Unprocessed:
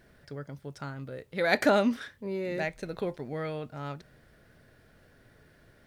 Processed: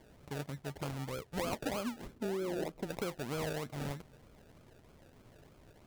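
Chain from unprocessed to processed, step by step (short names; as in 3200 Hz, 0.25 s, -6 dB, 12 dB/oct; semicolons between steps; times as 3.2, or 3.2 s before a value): decimation with a swept rate 33×, swing 60% 3.2 Hz; 2.14–2.87 bell 320 Hz +9.5 dB 1.6 oct; compressor 16:1, threshold -33 dBFS, peak gain reduction 16 dB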